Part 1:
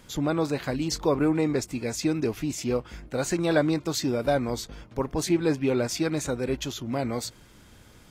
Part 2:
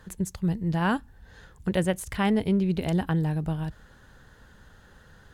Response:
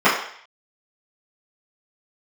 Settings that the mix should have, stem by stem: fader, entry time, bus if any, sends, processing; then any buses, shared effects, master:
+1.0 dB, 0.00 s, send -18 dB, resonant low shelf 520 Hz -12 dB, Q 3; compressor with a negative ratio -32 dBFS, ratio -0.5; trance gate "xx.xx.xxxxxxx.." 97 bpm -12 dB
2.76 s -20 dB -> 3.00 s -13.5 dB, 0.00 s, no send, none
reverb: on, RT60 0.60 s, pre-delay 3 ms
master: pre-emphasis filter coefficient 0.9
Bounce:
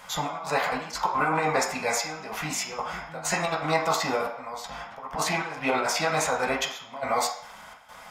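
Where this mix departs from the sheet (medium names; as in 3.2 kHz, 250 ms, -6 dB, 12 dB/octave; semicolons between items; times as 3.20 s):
stem 2 -20.0 dB -> -28.0 dB; master: missing pre-emphasis filter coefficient 0.9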